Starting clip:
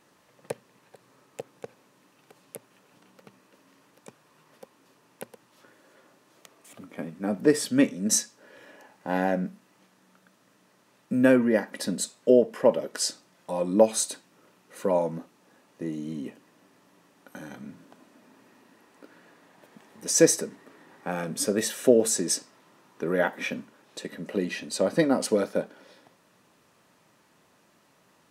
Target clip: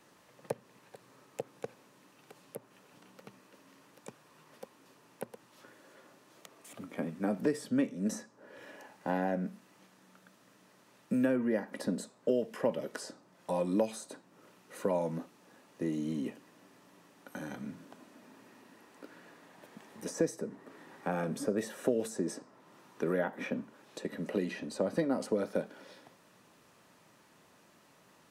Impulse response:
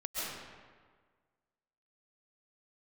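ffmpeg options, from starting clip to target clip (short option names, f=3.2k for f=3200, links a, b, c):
-filter_complex "[0:a]acrossover=split=220|1500[a][b][c];[a]acompressor=threshold=-39dB:ratio=4[d];[b]acompressor=threshold=-30dB:ratio=4[e];[c]acompressor=threshold=-49dB:ratio=4[f];[d][e][f]amix=inputs=3:normalize=0"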